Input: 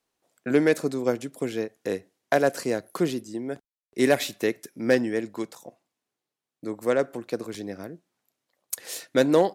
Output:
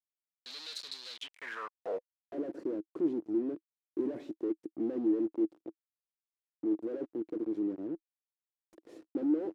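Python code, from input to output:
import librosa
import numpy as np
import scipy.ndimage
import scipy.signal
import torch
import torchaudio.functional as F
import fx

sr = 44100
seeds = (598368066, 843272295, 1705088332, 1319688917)

y = fx.fuzz(x, sr, gain_db=46.0, gate_db=-38.0)
y = fx.filter_sweep_bandpass(y, sr, from_hz=4100.0, to_hz=320.0, start_s=1.13, end_s=2.19, q=7.3)
y = y * librosa.db_to_amplitude(-7.5)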